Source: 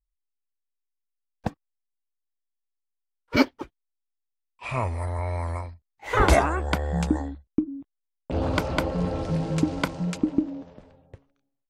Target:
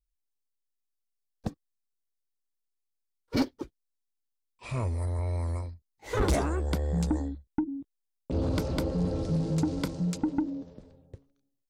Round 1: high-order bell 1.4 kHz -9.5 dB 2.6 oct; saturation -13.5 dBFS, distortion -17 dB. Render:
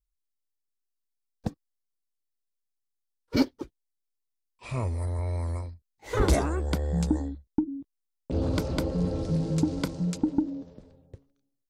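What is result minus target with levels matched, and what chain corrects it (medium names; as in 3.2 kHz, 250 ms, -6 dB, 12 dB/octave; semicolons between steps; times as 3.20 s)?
saturation: distortion -7 dB
high-order bell 1.4 kHz -9.5 dB 2.6 oct; saturation -20 dBFS, distortion -10 dB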